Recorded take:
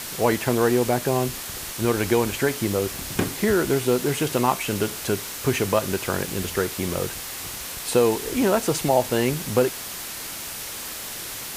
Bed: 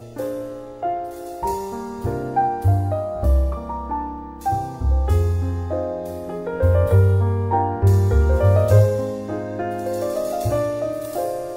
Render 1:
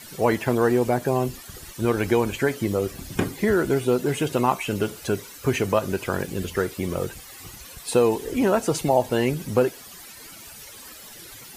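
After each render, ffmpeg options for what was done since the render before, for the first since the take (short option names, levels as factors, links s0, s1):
-af "afftdn=nr=14:nf=-34"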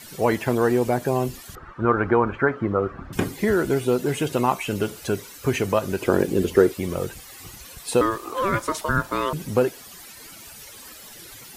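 -filter_complex "[0:a]asettb=1/sr,asplit=3[s0][s1][s2];[s0]atrim=end=1.554[s3];[s1]atrim=start=1.55:end=3.13,asetpts=PTS-STARTPTS,afade=t=in:d=0.004:c=qsin,afade=t=out:st=1.576:d=0.004:c=qsin,lowpass=f=1300:t=q:w=4[s4];[s2]atrim=start=3.126[s5];[s3][s4]acrossfade=d=0.004:c1=hsin:c2=qsin[s6];[s6][s5]acrossfade=d=0.004:c1=qsin:c2=hsin,asettb=1/sr,asplit=3[s7][s8][s9];[s7]atrim=end=6.014[s10];[s8]atrim=start=6.01:end=6.72,asetpts=PTS-STARTPTS,afade=t=in:d=0.004:c=qsin,afade=t=out:st=0.706:d=0.004:c=qsin,equalizer=f=350:w=0.87:g=11[s11];[s9]atrim=start=6.716[s12];[s10][s11]acrossfade=d=0.004:c1=hsin:c2=qsin[s13];[s13][s12]acrossfade=d=0.004:c1=qsin:c2=hsin,asettb=1/sr,asplit=3[s14][s15][s16];[s14]atrim=end=8.014[s17];[s15]atrim=start=8.01:end=9.33,asetpts=PTS-STARTPTS,afade=t=in:d=0.004:c=qsin,afade=t=out:st=1.316:d=0.004:c=qsin,aeval=exprs='val(0)*sin(2*PI*780*n/s)':c=same[s18];[s16]atrim=start=9.326[s19];[s17][s18]acrossfade=d=0.004:c1=hsin:c2=qsin[s20];[s20][s19]acrossfade=d=0.004:c1=qsin:c2=hsin"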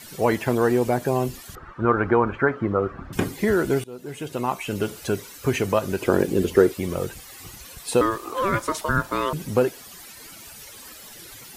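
-filter_complex "[0:a]asplit=2[s0][s1];[s0]atrim=end=3.84,asetpts=PTS-STARTPTS,afade=t=out:st=3.836:d=0.004:c=hsin:silence=0.0630957[s2];[s1]atrim=start=3.84,asetpts=PTS-STARTPTS,afade=t=in:d=1.08:silence=0.0630957[s3];[s2][s3]concat=n=2:v=0:a=1"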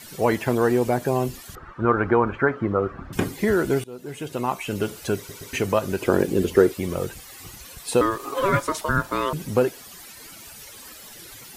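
-filter_complex "[0:a]asettb=1/sr,asplit=3[s0][s1][s2];[s0]atrim=end=8.194[s3];[s1]atrim=start=8.19:end=8.63,asetpts=PTS-STARTPTS,afade=t=in:d=0.004:c=qsin,afade=t=out:st=0.436:d=0.004:c=qsin,aecho=1:1:7.2:0.81,atrim=end_sample=19404[s4];[s2]atrim=start=8.626[s5];[s3][s4]acrossfade=d=0.004:c1=hsin:c2=qsin[s6];[s6][s5]acrossfade=d=0.004:c1=qsin:c2=hsin,asplit=4[s7][s8][s9][s10];[s7]atrim=end=5.292[s11];[s8]atrim=start=5.168:end=5.292[s12];[s9]atrim=start=5.168:end=5.292[s13];[s10]atrim=start=5.528[s14];[s11][s12]acrossfade=d=0.004:c1=hsin:c2=hsin[s15];[s15][s13]acrossfade=d=0.004:c1=hsin:c2=hsin[s16];[s16][s14]acrossfade=d=0.004:c1=hsin:c2=hsin"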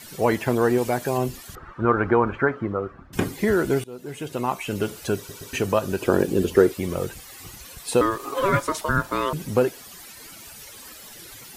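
-filter_complex "[0:a]asettb=1/sr,asplit=3[s0][s1][s2];[s0]atrim=end=0.784[s3];[s1]atrim=start=0.78:end=1.18,asetpts=PTS-STARTPTS,afade=t=in:d=0.004:c=qsin,afade=t=out:st=0.396:d=0.004:c=qsin,tiltshelf=f=970:g=-3.5[s4];[s2]atrim=start=1.176[s5];[s3][s4]acrossfade=d=0.004:c1=hsin:c2=qsin[s6];[s6][s5]acrossfade=d=0.004:c1=qsin:c2=hsin,asettb=1/sr,asplit=3[s7][s8][s9];[s7]atrim=end=5.064[s10];[s8]atrim=start=5.06:end=6.55,asetpts=PTS-STARTPTS,afade=t=in:d=0.004:c=qsin,afade=t=out:st=1.486:d=0.004:c=qsin,bandreject=f=2100:w=8.2[s11];[s9]atrim=start=6.546[s12];[s10][s11]acrossfade=d=0.004:c1=hsin:c2=qsin[s13];[s13][s12]acrossfade=d=0.004:c1=qsin:c2=hsin,asplit=2[s14][s15];[s14]atrim=end=3.13,asetpts=PTS-STARTPTS,afade=t=out:st=2.38:d=0.75:silence=0.251189[s16];[s15]atrim=start=3.13,asetpts=PTS-STARTPTS,afade=t=in:d=0.004:c=hsin:silence=0.251189[s17];[s16][s17]concat=n=2:v=0:a=1"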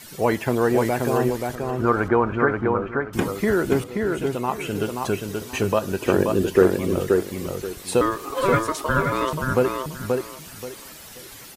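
-filter_complex "[0:a]asplit=2[s0][s1];[s1]adelay=530,lowpass=f=3500:p=1,volume=0.668,asplit=2[s2][s3];[s3]adelay=530,lowpass=f=3500:p=1,volume=0.25,asplit=2[s4][s5];[s5]adelay=530,lowpass=f=3500:p=1,volume=0.25,asplit=2[s6][s7];[s7]adelay=530,lowpass=f=3500:p=1,volume=0.25[s8];[s0][s2][s4][s6][s8]amix=inputs=5:normalize=0"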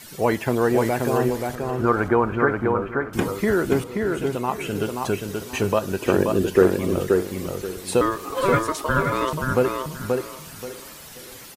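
-af "aecho=1:1:583|1166|1749:0.1|0.044|0.0194"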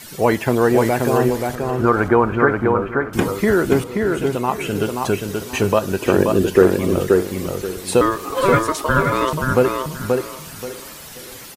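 -af "volume=1.68,alimiter=limit=0.891:level=0:latency=1"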